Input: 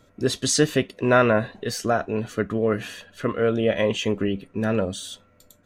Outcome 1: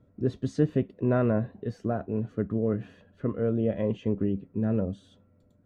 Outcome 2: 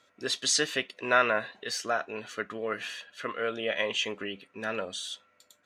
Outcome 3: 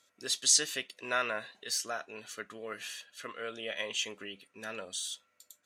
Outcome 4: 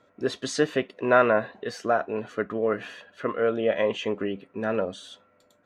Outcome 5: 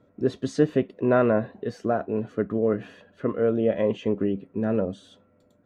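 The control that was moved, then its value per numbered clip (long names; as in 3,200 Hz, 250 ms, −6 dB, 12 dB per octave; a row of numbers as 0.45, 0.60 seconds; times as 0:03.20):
resonant band-pass, frequency: 120, 2,900, 7,700, 910, 310 Hertz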